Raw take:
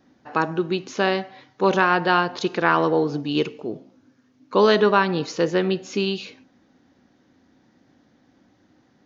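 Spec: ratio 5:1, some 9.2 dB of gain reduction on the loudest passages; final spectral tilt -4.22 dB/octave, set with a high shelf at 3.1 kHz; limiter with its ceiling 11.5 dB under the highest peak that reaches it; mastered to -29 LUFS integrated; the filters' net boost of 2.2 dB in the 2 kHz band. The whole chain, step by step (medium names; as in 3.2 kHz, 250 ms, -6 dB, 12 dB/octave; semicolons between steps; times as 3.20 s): peaking EQ 2 kHz +5.5 dB; treble shelf 3.1 kHz -7.5 dB; compression 5:1, threshold -22 dBFS; trim +3 dB; peak limiter -17.5 dBFS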